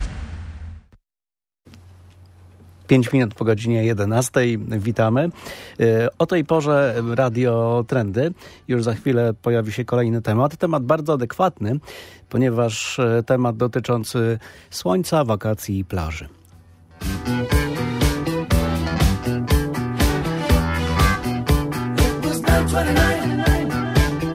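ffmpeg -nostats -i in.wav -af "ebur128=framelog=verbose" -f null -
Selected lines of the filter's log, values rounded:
Integrated loudness:
  I:         -20.3 LUFS
  Threshold: -31.0 LUFS
Loudness range:
  LRA:         4.0 LU
  Threshold: -40.9 LUFS
  LRA low:   -23.5 LUFS
  LRA high:  -19.4 LUFS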